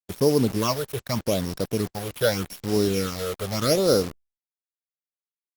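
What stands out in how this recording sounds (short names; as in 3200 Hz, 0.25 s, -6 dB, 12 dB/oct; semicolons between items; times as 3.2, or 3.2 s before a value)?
a buzz of ramps at a fixed pitch in blocks of 8 samples; phasing stages 8, 0.82 Hz, lowest notch 240–2600 Hz; a quantiser's noise floor 6-bit, dither none; Opus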